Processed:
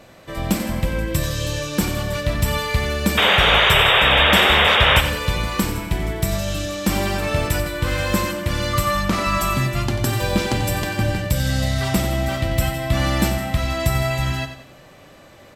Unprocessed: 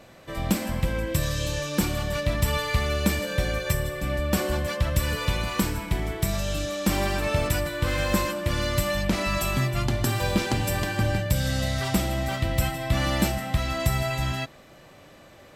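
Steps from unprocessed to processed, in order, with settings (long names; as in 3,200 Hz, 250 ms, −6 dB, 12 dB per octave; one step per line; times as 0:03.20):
0:03.17–0:05.01: sound drawn into the spectrogram noise 390–3,800 Hz −19 dBFS
0:08.73–0:09.54: parametric band 1,200 Hz +11 dB 0.28 octaves
repeating echo 91 ms, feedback 40%, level −10.5 dB
level +3.5 dB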